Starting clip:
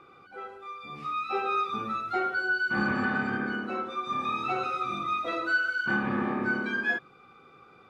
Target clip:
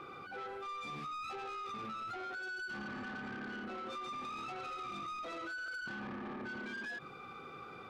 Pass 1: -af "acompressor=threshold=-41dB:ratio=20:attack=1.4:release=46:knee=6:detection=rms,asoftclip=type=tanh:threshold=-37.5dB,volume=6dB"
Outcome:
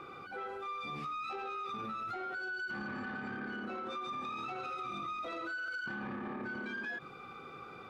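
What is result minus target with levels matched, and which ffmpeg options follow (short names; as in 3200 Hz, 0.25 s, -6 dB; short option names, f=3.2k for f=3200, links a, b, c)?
soft clip: distortion -10 dB
-af "acompressor=threshold=-41dB:ratio=20:attack=1.4:release=46:knee=6:detection=rms,asoftclip=type=tanh:threshold=-45dB,volume=6dB"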